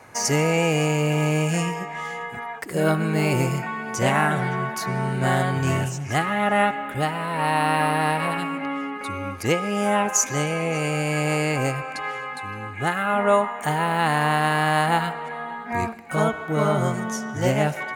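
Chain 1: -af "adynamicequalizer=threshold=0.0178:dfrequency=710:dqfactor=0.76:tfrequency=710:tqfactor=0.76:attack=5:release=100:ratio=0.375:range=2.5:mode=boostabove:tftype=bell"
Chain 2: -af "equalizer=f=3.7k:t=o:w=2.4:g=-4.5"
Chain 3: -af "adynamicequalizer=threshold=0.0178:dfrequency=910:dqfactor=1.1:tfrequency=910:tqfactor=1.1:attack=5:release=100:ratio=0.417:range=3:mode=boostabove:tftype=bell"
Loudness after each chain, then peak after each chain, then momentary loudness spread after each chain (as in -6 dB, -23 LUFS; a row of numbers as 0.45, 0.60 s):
-20.5, -24.0, -20.5 LUFS; -2.0, -7.0, -2.0 dBFS; 10, 10, 11 LU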